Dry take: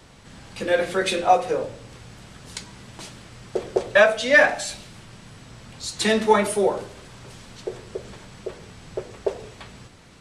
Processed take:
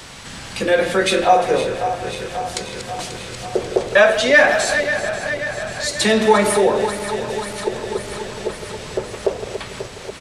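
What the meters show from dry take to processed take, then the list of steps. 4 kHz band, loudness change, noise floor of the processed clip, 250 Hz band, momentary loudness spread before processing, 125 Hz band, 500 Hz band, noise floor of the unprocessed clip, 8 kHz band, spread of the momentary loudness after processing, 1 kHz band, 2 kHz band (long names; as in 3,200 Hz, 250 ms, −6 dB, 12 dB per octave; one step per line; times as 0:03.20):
+6.5 dB, +2.5 dB, −35 dBFS, +6.0 dB, 22 LU, +6.5 dB, +5.5 dB, −49 dBFS, +7.5 dB, 15 LU, +5.0 dB, +5.0 dB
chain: feedback delay that plays each chunk backwards 269 ms, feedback 78%, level −12.5 dB
in parallel at +1.5 dB: brickwall limiter −15.5 dBFS, peak gain reduction 11.5 dB
on the sum: far-end echo of a speakerphone 160 ms, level −11 dB
one half of a high-frequency compander encoder only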